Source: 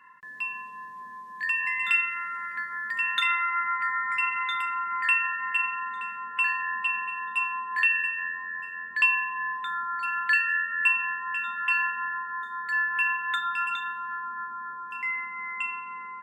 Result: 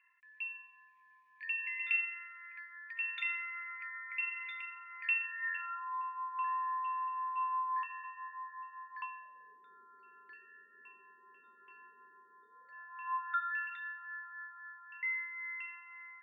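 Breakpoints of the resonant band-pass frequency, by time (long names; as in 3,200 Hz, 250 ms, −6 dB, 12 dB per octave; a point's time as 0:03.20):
resonant band-pass, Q 9.7
0:05.25 2,400 Hz
0:05.97 1,000 Hz
0:08.98 1,000 Hz
0:09.56 390 Hz
0:12.42 390 Hz
0:13.61 1,900 Hz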